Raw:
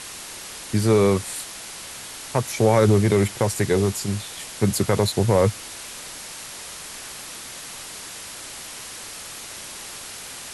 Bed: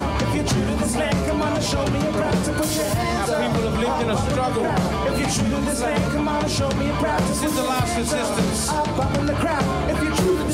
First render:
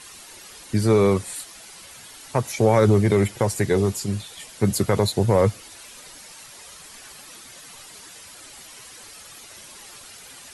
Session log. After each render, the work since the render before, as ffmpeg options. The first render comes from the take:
-af "afftdn=nr=10:nf=-37"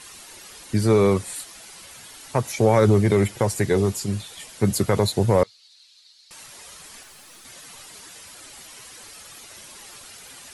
-filter_complex "[0:a]asettb=1/sr,asplit=3[a][b][c];[a]atrim=end=5.434[d];[b]atrim=start=5.43:end=6.31,asetpts=PTS-STARTPTS,afade=t=in:d=0.004:c=qsin,afade=t=out:st=0.876:d=0.004:c=qsin,bandpass=f=4.2k:t=q:w=5.8[e];[c]atrim=start=6.306[f];[d][e]acrossfade=d=0.004:c1=hsin:c2=qsin[g];[g][f]acrossfade=d=0.004:c1=qsin:c2=hsin,asettb=1/sr,asplit=3[h][i][j];[h]atrim=end=7.034[k];[i]atrim=start=7.03:end=7.45,asetpts=PTS-STARTPTS,afade=t=in:d=0.004:c=qsin,afade=t=out:st=0.416:d=0.004:c=qsin,aeval=exprs='(tanh(126*val(0)+0.45)-tanh(0.45))/126':c=same[l];[j]atrim=start=7.446[m];[k][l]acrossfade=d=0.004:c1=hsin:c2=qsin[n];[n][m]acrossfade=d=0.004:c1=qsin:c2=hsin"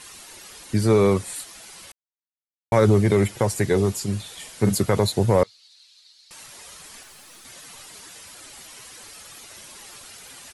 -filter_complex "[0:a]asplit=3[a][b][c];[a]afade=t=out:st=4.24:d=0.02[d];[b]asplit=2[e][f];[f]adelay=45,volume=-7.5dB[g];[e][g]amix=inputs=2:normalize=0,afade=t=in:st=4.24:d=0.02,afade=t=out:st=4.74:d=0.02[h];[c]afade=t=in:st=4.74:d=0.02[i];[d][h][i]amix=inputs=3:normalize=0,asplit=3[j][k][l];[j]atrim=end=1.92,asetpts=PTS-STARTPTS,afade=t=out:st=1.916:d=0.004:c=hsin[m];[k]atrim=start=1.92:end=2.72,asetpts=PTS-STARTPTS,volume=0[n];[l]atrim=start=2.72,asetpts=PTS-STARTPTS,afade=t=in:d=0.004:c=hsin[o];[m][n][o]concat=n=3:v=0:a=1"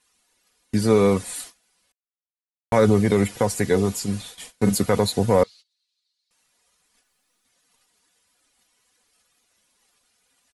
-af "aecho=1:1:4.1:0.42,agate=range=-25dB:threshold=-38dB:ratio=16:detection=peak"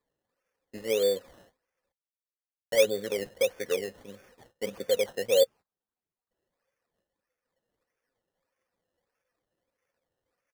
-filter_complex "[0:a]asplit=3[a][b][c];[a]bandpass=f=530:t=q:w=8,volume=0dB[d];[b]bandpass=f=1.84k:t=q:w=8,volume=-6dB[e];[c]bandpass=f=2.48k:t=q:w=8,volume=-9dB[f];[d][e][f]amix=inputs=3:normalize=0,acrusher=samples=15:mix=1:aa=0.000001:lfo=1:lforange=9:lforate=1.6"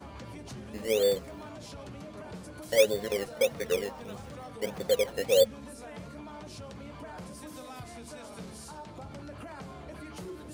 -filter_complex "[1:a]volume=-22.5dB[a];[0:a][a]amix=inputs=2:normalize=0"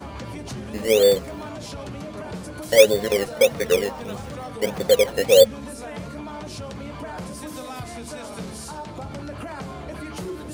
-af "volume=9.5dB"

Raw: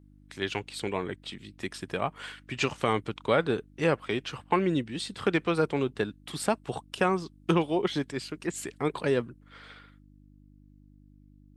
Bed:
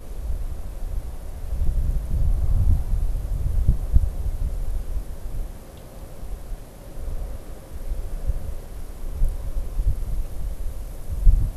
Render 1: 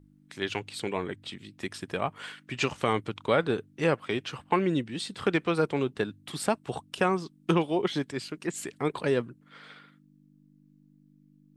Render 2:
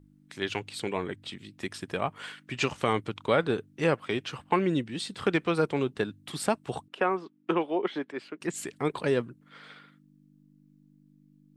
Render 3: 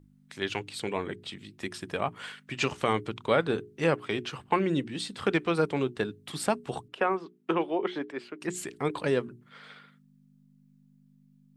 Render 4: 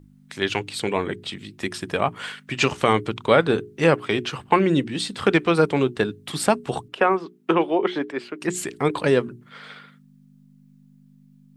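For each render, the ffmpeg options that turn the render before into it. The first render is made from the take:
-af "bandreject=f=50:t=h:w=4,bandreject=f=100:t=h:w=4"
-filter_complex "[0:a]asettb=1/sr,asplit=3[a][b][c];[a]atrim=end=6.884[d];[b]atrim=start=6.88:end=8.41,asetpts=PTS-STARTPTS,afade=t=in:d=0.004:c=qsin,afade=t=out:st=1.526:d=0.004:c=qsin,acrossover=split=240 2900:gain=0.0631 1 0.112[e][f][g];[e][f][g]amix=inputs=3:normalize=0[h];[c]atrim=start=8.406[i];[d][h]acrossfade=d=0.004:c1=hsin:c2=qsin[j];[j][i]acrossfade=d=0.004:c1=qsin:c2=hsin"
-af "bandreject=f=60:t=h:w=6,bandreject=f=120:t=h:w=6,bandreject=f=180:t=h:w=6,bandreject=f=240:t=h:w=6,bandreject=f=300:t=h:w=6,bandreject=f=360:t=h:w=6,bandreject=f=420:t=h:w=6"
-af "volume=8dB"

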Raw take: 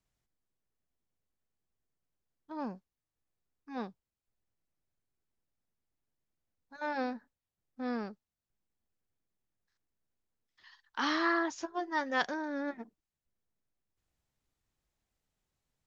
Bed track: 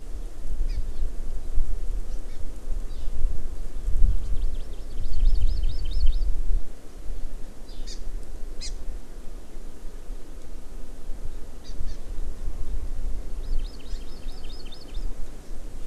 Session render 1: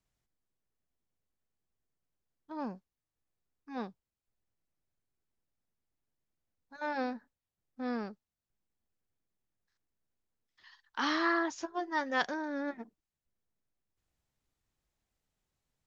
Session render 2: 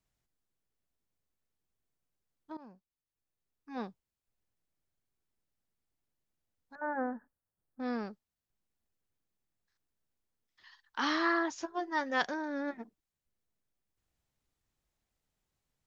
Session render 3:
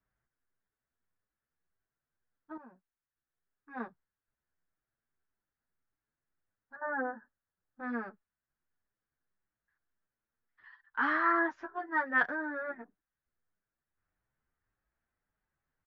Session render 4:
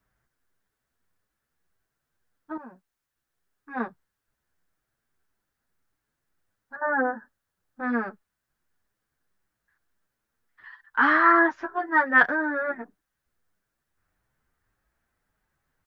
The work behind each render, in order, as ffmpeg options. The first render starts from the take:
-af anull
-filter_complex "[0:a]asettb=1/sr,asplit=3[a][b][c];[a]atrim=end=6.754[d];[b]atrim=start=6.75:end=7.8,asetpts=PTS-STARTPTS,afade=t=in:d=0.004:c=qsin,afade=t=out:st=1.046:d=0.004:c=qsin,asuperstop=centerf=4000:order=12:qfactor=0.63[e];[c]atrim=start=7.796[f];[d][e]acrossfade=d=0.004:c1=hsin:c2=qsin[g];[g][f]acrossfade=d=0.004:c1=qsin:c2=hsin,asplit=2[h][i];[h]atrim=end=2.57,asetpts=PTS-STARTPTS,afade=t=out:st=2.566:d=0.004:c=hsin:silence=0.11885[j];[i]atrim=start=2.57,asetpts=PTS-STARTPTS,afade=t=in:d=1.29:silence=0.11885[k];[j][k]concat=n=2:v=0:a=1"
-filter_complex "[0:a]lowpass=f=1.6k:t=q:w=3.2,asplit=2[a][b];[b]adelay=7.7,afreqshift=1.7[c];[a][c]amix=inputs=2:normalize=1"
-af "volume=10dB"

